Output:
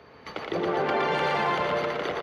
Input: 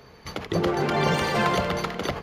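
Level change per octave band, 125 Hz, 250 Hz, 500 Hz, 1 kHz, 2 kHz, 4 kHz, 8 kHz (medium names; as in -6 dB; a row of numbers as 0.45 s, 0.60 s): -10.5 dB, -6.0 dB, -1.0 dB, 0.0 dB, -1.0 dB, -4.0 dB, under -10 dB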